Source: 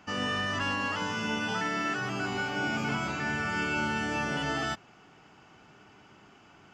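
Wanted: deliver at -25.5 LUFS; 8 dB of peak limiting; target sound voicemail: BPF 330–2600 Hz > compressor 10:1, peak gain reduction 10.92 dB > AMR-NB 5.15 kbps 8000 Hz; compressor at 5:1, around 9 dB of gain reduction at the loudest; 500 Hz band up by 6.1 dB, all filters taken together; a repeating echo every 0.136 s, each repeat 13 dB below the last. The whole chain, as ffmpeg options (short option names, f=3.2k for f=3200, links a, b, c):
-af "equalizer=f=500:t=o:g=9,acompressor=threshold=-35dB:ratio=5,alimiter=level_in=7.5dB:limit=-24dB:level=0:latency=1,volume=-7.5dB,highpass=330,lowpass=2.6k,aecho=1:1:136|272|408:0.224|0.0493|0.0108,acompressor=threshold=-48dB:ratio=10,volume=29dB" -ar 8000 -c:a libopencore_amrnb -b:a 5150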